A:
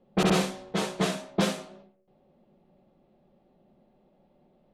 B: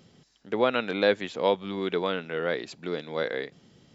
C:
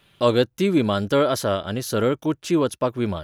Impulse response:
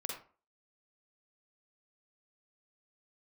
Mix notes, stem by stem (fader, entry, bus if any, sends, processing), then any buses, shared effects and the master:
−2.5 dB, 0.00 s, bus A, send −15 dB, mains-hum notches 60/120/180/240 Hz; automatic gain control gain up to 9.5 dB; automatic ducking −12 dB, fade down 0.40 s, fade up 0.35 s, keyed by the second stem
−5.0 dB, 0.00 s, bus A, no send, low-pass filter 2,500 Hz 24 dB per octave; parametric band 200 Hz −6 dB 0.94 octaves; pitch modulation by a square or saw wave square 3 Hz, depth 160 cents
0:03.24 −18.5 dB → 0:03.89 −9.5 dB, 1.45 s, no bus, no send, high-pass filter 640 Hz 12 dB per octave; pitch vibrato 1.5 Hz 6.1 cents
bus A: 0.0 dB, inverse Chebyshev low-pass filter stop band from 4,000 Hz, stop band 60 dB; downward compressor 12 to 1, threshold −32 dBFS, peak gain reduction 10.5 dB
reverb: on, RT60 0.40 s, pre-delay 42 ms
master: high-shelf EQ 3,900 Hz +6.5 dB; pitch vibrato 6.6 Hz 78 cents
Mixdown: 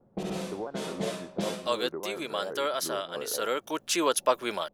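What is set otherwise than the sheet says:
stem C −18.5 dB → −7.0 dB
master: missing pitch vibrato 6.6 Hz 78 cents

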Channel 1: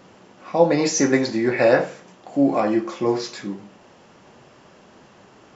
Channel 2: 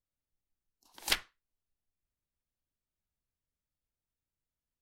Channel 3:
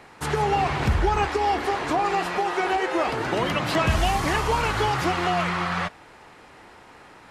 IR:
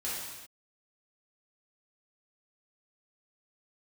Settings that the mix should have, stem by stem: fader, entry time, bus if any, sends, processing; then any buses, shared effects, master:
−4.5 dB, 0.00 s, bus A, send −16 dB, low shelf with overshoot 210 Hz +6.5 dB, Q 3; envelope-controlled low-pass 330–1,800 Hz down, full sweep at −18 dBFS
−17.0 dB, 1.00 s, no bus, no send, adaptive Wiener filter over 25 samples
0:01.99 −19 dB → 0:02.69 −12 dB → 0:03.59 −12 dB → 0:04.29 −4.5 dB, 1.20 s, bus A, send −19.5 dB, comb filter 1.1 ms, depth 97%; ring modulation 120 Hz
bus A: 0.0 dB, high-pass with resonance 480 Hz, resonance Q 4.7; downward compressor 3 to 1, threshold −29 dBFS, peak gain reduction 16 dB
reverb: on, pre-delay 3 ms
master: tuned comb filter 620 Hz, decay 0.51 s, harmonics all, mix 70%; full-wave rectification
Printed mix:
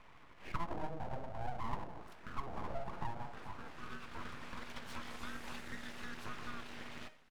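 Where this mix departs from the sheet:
stem 2 −17.0 dB → −26.0 dB
stem 3 −19.0 dB → −26.5 dB

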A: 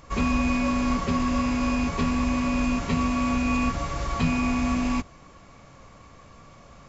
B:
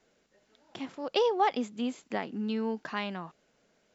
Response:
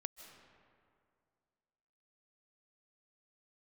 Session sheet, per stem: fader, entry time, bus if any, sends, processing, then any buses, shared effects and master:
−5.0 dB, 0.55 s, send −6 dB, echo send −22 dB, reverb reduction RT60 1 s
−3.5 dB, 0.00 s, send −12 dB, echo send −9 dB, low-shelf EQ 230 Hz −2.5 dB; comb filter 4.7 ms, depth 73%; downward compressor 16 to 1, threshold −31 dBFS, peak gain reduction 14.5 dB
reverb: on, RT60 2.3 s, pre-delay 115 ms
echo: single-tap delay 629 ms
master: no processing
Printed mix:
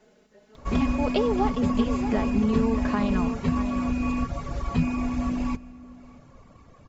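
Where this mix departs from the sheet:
stem B −3.5 dB → +5.5 dB
master: extra tilt shelving filter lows +4.5 dB

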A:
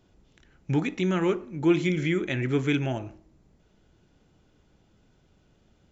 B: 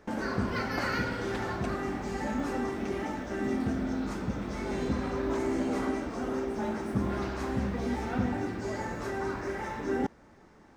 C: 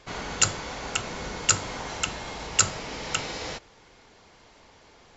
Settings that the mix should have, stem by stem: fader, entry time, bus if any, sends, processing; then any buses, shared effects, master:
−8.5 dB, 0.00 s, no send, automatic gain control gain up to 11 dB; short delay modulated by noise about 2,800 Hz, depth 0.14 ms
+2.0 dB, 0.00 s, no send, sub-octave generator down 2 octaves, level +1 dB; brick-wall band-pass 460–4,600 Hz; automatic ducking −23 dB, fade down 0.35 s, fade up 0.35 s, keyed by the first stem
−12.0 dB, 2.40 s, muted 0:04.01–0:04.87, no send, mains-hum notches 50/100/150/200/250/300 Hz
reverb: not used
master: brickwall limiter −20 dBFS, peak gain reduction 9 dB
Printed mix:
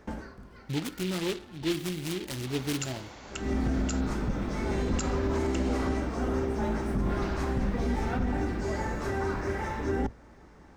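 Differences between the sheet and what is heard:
stem A −8.5 dB → −16.5 dB
stem B: missing brick-wall band-pass 460–4,600 Hz

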